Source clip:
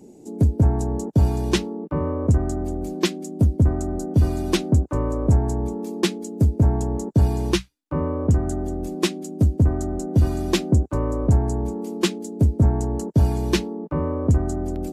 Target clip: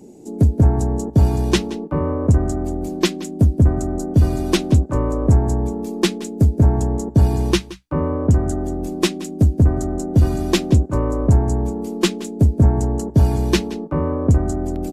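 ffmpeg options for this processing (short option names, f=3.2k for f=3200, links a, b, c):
-af "aeval=exprs='0.447*(cos(1*acos(clip(val(0)/0.447,-1,1)))-cos(1*PI/2))+0.00631*(cos(8*acos(clip(val(0)/0.447,-1,1)))-cos(8*PI/2))':c=same,aecho=1:1:173:0.133,volume=3.5dB"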